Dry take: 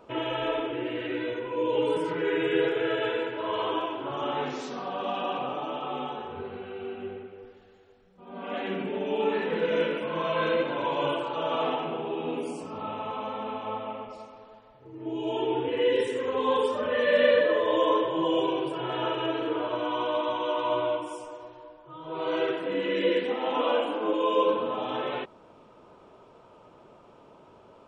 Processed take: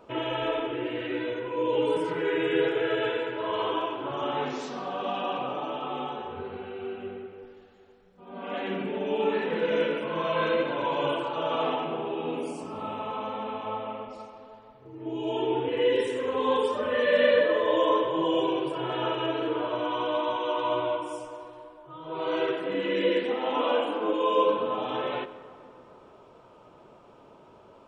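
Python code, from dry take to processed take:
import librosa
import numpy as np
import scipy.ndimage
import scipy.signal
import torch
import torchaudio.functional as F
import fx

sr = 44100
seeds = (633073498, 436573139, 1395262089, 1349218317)

y = fx.rev_plate(x, sr, seeds[0], rt60_s=2.9, hf_ratio=0.5, predelay_ms=0, drr_db=12.5)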